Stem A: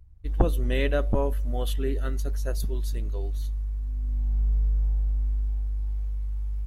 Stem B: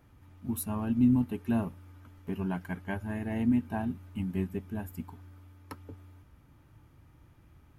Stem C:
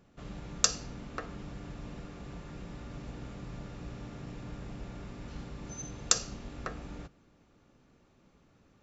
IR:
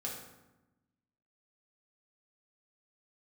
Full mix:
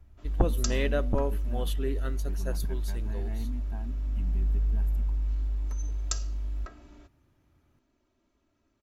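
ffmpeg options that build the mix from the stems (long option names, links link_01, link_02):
-filter_complex "[0:a]volume=-2.5dB[link_01];[1:a]alimiter=level_in=1.5dB:limit=-24dB:level=0:latency=1:release=130,volume=-1.5dB,volume=-9.5dB[link_02];[2:a]aecho=1:1:3.1:0.88,volume=-11dB[link_03];[link_01][link_02][link_03]amix=inputs=3:normalize=0"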